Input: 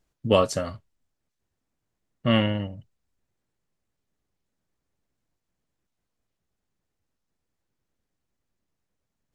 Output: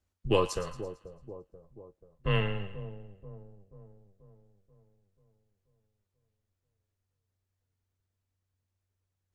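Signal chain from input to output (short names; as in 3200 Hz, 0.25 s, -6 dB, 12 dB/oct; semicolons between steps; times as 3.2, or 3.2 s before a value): split-band echo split 900 Hz, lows 0.485 s, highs 0.112 s, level -13 dB; frequency shift -94 Hz; gain -6 dB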